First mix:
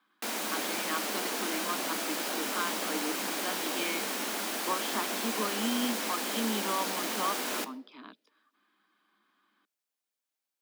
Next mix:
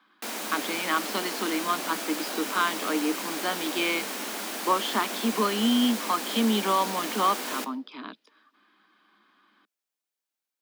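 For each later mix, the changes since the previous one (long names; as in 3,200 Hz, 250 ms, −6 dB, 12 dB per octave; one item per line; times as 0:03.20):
speech +9.0 dB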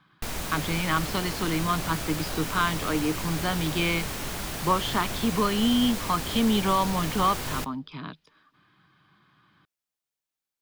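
background: send −7.5 dB
master: remove Butterworth high-pass 210 Hz 72 dB per octave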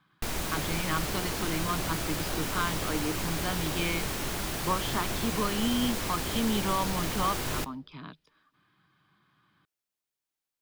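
speech −6.0 dB
background: add parametric band 350 Hz +3.5 dB 0.41 octaves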